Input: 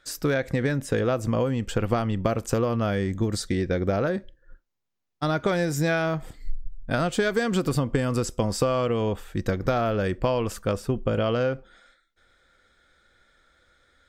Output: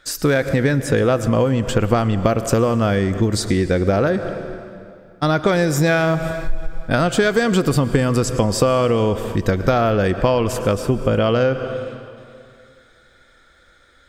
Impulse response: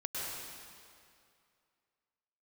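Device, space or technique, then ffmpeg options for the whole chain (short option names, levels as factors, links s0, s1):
ducked reverb: -filter_complex "[0:a]asplit=3[s0][s1][s2];[1:a]atrim=start_sample=2205[s3];[s1][s3]afir=irnorm=-1:irlink=0[s4];[s2]apad=whole_len=620982[s5];[s4][s5]sidechaincompress=threshold=0.0355:ratio=5:attack=8.8:release=161,volume=0.376[s6];[s0][s6]amix=inputs=2:normalize=0,volume=2.11"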